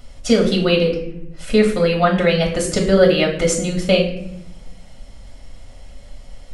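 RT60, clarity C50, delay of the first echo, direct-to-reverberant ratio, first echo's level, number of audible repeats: 0.75 s, 7.5 dB, none, -0.5 dB, none, none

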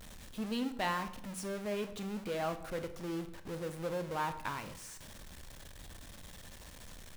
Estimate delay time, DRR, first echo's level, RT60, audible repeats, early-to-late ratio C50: none, 9.0 dB, none, 0.70 s, none, 12.0 dB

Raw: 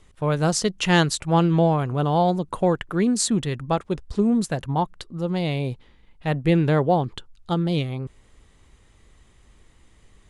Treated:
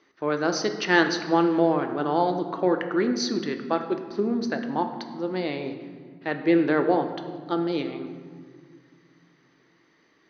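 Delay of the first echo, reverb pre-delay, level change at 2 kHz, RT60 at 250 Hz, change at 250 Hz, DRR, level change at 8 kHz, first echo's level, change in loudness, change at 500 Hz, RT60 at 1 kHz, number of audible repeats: none, 3 ms, +2.0 dB, 3.0 s, -2.0 dB, 6.0 dB, -9.5 dB, none, -2.5 dB, -0.5 dB, 1.7 s, none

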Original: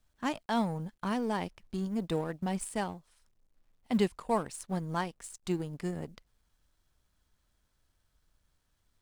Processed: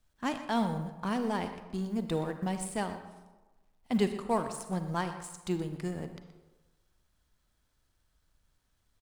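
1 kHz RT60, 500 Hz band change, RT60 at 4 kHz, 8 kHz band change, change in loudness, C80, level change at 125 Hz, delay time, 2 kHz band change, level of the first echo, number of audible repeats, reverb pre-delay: 1.2 s, +0.5 dB, 0.70 s, +0.5 dB, +0.5 dB, 10.0 dB, +0.5 dB, 0.123 s, +0.5 dB, -14.5 dB, 1, 35 ms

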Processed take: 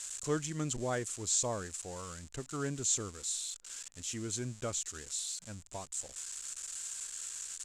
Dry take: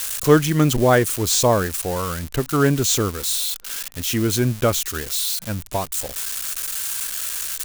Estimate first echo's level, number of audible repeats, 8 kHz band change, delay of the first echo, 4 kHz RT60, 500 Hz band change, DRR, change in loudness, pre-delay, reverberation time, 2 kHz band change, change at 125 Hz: none, none, -10.5 dB, none, none, -19.5 dB, none, -16.0 dB, none, none, -19.0 dB, -19.5 dB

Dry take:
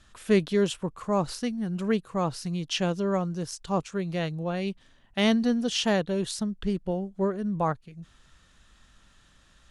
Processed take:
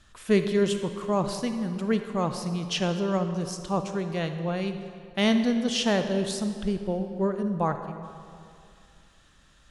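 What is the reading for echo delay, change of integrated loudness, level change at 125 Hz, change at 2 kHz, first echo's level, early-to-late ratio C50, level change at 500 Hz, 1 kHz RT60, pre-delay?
none, +1.0 dB, +1.0 dB, +0.5 dB, none, 8.0 dB, +1.0 dB, 2.3 s, 37 ms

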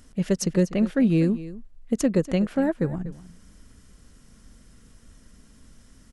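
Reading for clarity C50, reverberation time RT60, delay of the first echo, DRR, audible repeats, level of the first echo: none, none, 0.244 s, none, 1, -16.0 dB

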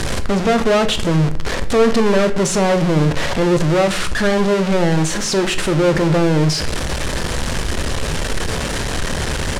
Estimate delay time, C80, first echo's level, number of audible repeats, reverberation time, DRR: none, 17.0 dB, none, none, 0.55 s, 8.5 dB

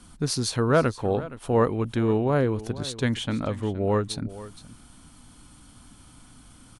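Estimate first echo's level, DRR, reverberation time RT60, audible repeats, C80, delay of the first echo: -16.5 dB, none, none, 1, none, 0.469 s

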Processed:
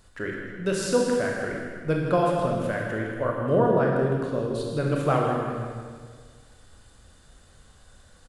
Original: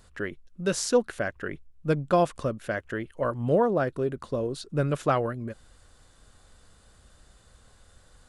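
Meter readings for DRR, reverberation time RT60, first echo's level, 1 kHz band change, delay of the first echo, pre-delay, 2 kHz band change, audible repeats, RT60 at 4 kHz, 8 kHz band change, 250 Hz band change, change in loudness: -1.5 dB, 1.8 s, -9.5 dB, +2.5 dB, 0.159 s, 22 ms, +3.0 dB, 1, 1.6 s, n/a, +3.5 dB, +2.5 dB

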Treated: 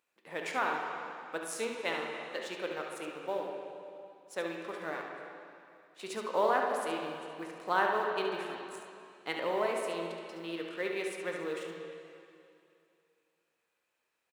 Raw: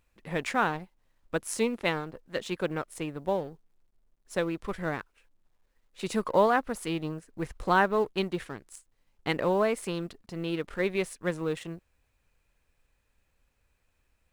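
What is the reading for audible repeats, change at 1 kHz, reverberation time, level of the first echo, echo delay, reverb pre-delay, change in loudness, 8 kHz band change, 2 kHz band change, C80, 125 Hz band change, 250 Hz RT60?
1, -3.0 dB, 2.6 s, -7.5 dB, 71 ms, 7 ms, -5.0 dB, -5.0 dB, -3.0 dB, 3.5 dB, -17.0 dB, 2.7 s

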